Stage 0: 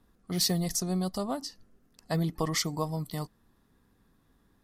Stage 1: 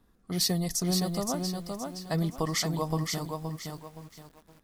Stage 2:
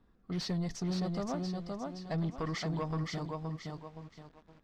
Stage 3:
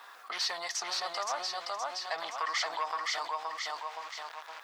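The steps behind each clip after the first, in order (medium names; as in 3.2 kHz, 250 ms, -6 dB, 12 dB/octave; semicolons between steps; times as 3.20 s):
bit-crushed delay 520 ms, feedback 35%, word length 9-bit, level -4 dB
saturation -26 dBFS, distortion -12 dB; distance through air 170 m; trim -1.5 dB
high-pass 830 Hz 24 dB/octave; level flattener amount 50%; trim +8 dB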